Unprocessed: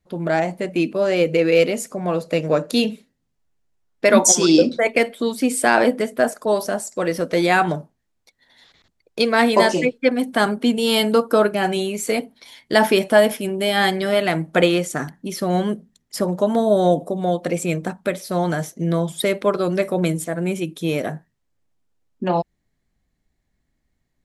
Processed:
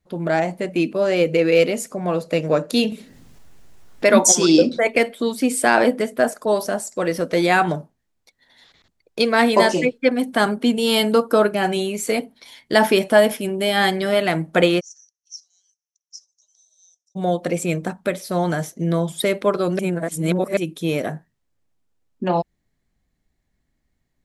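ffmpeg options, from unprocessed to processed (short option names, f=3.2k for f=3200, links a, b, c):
-filter_complex "[0:a]asettb=1/sr,asplit=3[a][b][c];[a]atrim=end=2.924[d];[b]atrim=start=2.92:end=5.08,asetpts=PTS-STARTPTS,afade=t=in:d=0.004:c=qsin,afade=t=out:st=2.156:d=0.004:c=qsin,acompressor=mode=upward:threshold=-23dB:ratio=2.5:attack=3.2:release=140:knee=2.83:detection=peak[e];[c]atrim=start=5.076[f];[d][e]acrossfade=d=0.004:c1=hsin:c2=qsin[g];[g][f]acrossfade=d=0.004:c1=qsin:c2=hsin,asplit=3[h][i][j];[h]afade=t=out:st=14.79:d=0.02[k];[i]asuperpass=centerf=5900:order=4:qfactor=6.4,afade=t=in:st=14.79:d=0.02,afade=t=out:st=17.15:d=0.02[l];[j]afade=t=in:st=17.15:d=0.02[m];[k][l][m]amix=inputs=3:normalize=0,asplit=3[n][o][p];[n]atrim=end=19.792[q];[o]atrim=start=19.788:end=20.572,asetpts=PTS-STARTPTS,areverse[r];[p]atrim=start=20.568[s];[q][r]acrossfade=d=0.004:c1=hsin:c2=hsin[t];[t][s]acrossfade=d=0.004:c1=hsin:c2=hsin"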